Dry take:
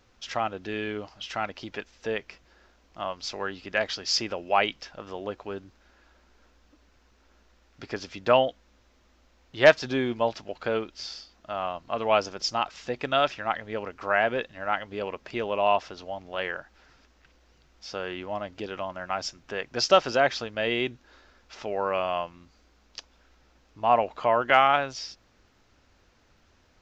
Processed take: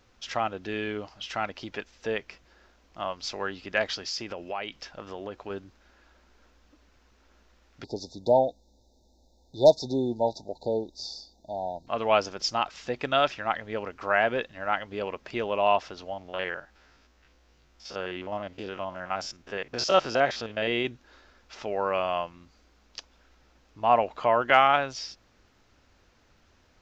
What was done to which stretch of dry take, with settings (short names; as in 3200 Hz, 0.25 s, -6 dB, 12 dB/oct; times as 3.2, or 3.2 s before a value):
3.97–5.5 compressor 3:1, threshold -32 dBFS
7.84–11.87 brick-wall FIR band-stop 950–3500 Hz
16.13–20.85 stepped spectrum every 50 ms